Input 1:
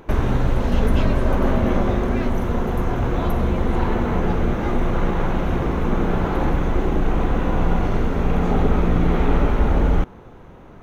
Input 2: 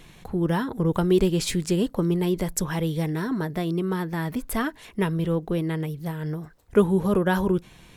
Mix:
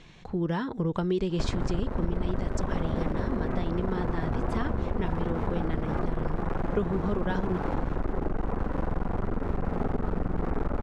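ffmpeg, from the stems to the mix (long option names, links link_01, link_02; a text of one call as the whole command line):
ffmpeg -i stem1.wav -i stem2.wav -filter_complex "[0:a]lowpass=frequency=1700:width=0.5412,lowpass=frequency=1700:width=1.3066,aeval=exprs='clip(val(0),-1,0.0447)':channel_layout=same,adelay=1300,volume=-1.5dB[link_01];[1:a]lowpass=frequency=6300:width=0.5412,lowpass=frequency=6300:width=1.3066,volume=-2.5dB[link_02];[link_01][link_02]amix=inputs=2:normalize=0,acompressor=threshold=-24dB:ratio=4" out.wav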